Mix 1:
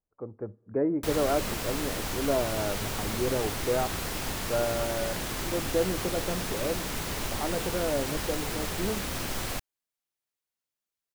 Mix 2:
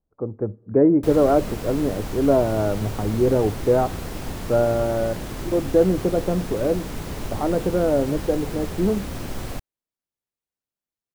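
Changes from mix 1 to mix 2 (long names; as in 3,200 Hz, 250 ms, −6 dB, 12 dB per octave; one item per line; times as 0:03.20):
speech +7.5 dB
master: add tilt shelving filter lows +5.5 dB, about 790 Hz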